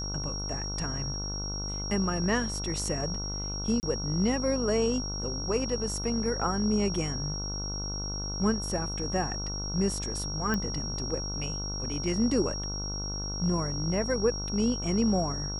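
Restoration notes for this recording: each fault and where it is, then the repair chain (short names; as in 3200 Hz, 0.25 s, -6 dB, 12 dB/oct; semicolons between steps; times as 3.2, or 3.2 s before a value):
buzz 50 Hz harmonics 30 -36 dBFS
tone 5600 Hz -35 dBFS
3.8–3.83 gap 29 ms
10.54 pop -16 dBFS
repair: de-click; de-hum 50 Hz, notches 30; notch 5600 Hz, Q 30; interpolate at 3.8, 29 ms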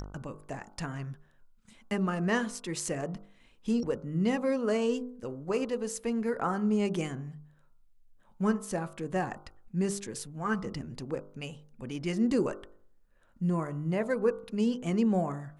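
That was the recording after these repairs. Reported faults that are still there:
none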